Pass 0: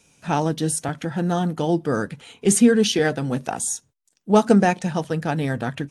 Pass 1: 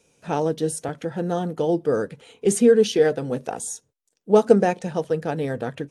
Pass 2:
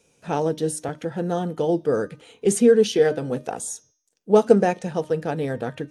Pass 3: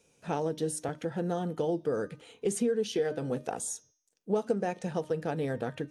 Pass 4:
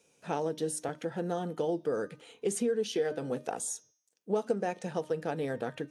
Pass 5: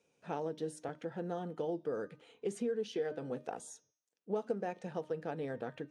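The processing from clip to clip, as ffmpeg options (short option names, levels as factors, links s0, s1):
-af "equalizer=f=470:w=1.8:g=11,volume=0.501"
-af "bandreject=f=306.8:t=h:w=4,bandreject=f=613.6:t=h:w=4,bandreject=f=920.4:t=h:w=4,bandreject=f=1227.2:t=h:w=4,bandreject=f=1534:t=h:w=4,bandreject=f=1840.8:t=h:w=4,bandreject=f=2147.6:t=h:w=4,bandreject=f=2454.4:t=h:w=4,bandreject=f=2761.2:t=h:w=4,bandreject=f=3068:t=h:w=4,bandreject=f=3374.8:t=h:w=4,bandreject=f=3681.6:t=h:w=4,bandreject=f=3988.4:t=h:w=4,bandreject=f=4295.2:t=h:w=4,bandreject=f=4602:t=h:w=4,bandreject=f=4908.8:t=h:w=4,bandreject=f=5215.6:t=h:w=4,bandreject=f=5522.4:t=h:w=4,bandreject=f=5829.2:t=h:w=4,bandreject=f=6136:t=h:w=4,bandreject=f=6442.8:t=h:w=4"
-af "acompressor=threshold=0.0794:ratio=4,volume=0.596"
-af "highpass=f=210:p=1"
-af "aemphasis=mode=reproduction:type=50fm,volume=0.501"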